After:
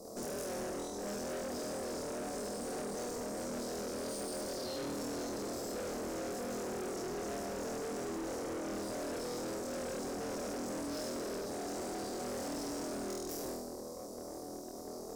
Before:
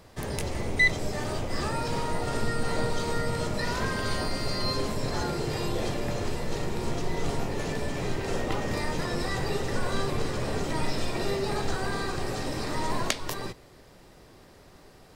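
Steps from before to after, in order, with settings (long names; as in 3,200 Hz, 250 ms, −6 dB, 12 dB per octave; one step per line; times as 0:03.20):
linear-phase brick-wall high-pass 190 Hz
downward compressor 6 to 1, threshold −40 dBFS, peak gain reduction 19.5 dB
elliptic band-stop filter 580–5,600 Hz
hollow resonant body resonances 740/2,200/3,800 Hz, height 12 dB
on a send: flutter between parallel walls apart 4.2 metres, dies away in 0.88 s
on the sum: tube saturation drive 48 dB, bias 0.7
level +10.5 dB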